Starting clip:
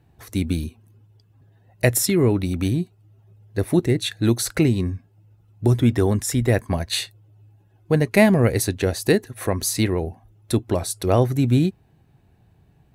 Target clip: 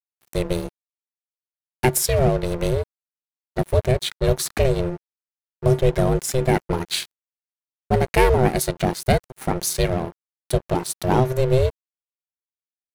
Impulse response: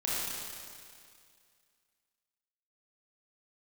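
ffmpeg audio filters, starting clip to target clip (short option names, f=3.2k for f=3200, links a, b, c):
-af "acontrast=77,aeval=exprs='val(0)*sin(2*PI*260*n/s)':c=same,aeval=exprs='sgn(val(0))*max(abs(val(0))-0.0316,0)':c=same,volume=-2dB"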